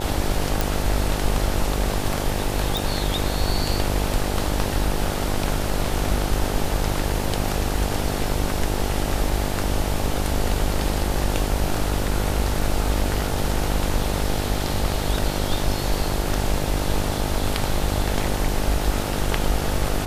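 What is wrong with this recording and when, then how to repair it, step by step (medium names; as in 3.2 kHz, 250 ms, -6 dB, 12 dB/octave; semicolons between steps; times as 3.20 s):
buzz 50 Hz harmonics 18 -27 dBFS
0.61 s: pop
2.77 s: pop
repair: de-click; de-hum 50 Hz, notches 18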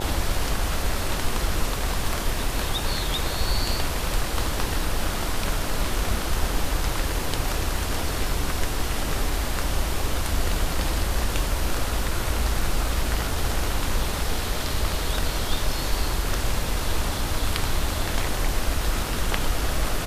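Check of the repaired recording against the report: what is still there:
nothing left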